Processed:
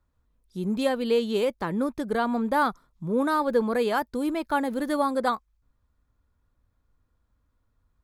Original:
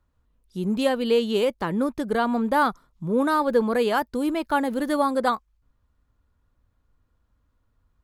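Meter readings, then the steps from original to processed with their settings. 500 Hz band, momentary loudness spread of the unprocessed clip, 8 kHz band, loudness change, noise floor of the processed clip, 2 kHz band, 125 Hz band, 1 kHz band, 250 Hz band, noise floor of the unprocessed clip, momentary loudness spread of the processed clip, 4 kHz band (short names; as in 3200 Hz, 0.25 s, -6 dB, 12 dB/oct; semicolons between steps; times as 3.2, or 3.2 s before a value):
-2.5 dB, 5 LU, -2.5 dB, -2.5 dB, -73 dBFS, -2.5 dB, -2.5 dB, -2.5 dB, -2.5 dB, -70 dBFS, 5 LU, -4.0 dB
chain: notch 2900 Hz, Q 15; gain -2.5 dB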